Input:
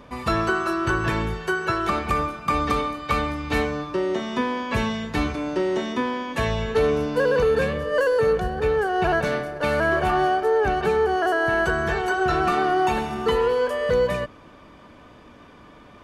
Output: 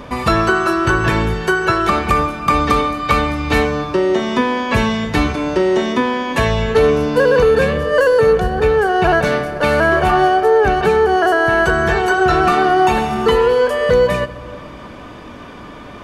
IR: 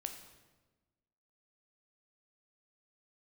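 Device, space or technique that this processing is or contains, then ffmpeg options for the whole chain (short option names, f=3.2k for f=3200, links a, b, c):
ducked reverb: -filter_complex "[0:a]asplit=3[a][b][c];[1:a]atrim=start_sample=2205[d];[b][d]afir=irnorm=-1:irlink=0[e];[c]apad=whole_len=707283[f];[e][f]sidechaincompress=threshold=-31dB:ratio=8:attack=16:release=472,volume=4dB[g];[a][g]amix=inputs=2:normalize=0,volume=6dB"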